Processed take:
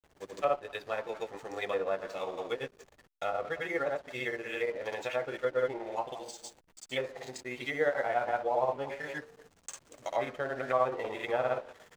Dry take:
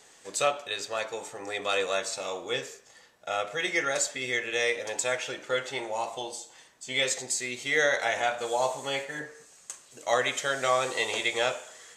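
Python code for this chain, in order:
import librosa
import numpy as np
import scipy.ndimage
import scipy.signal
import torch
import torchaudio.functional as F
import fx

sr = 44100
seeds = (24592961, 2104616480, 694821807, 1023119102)

y = fx.granulator(x, sr, seeds[0], grain_ms=110.0, per_s=17.0, spray_ms=100.0, spread_st=0)
y = fx.env_lowpass_down(y, sr, base_hz=1200.0, full_db=-27.5)
y = fx.backlash(y, sr, play_db=-46.0)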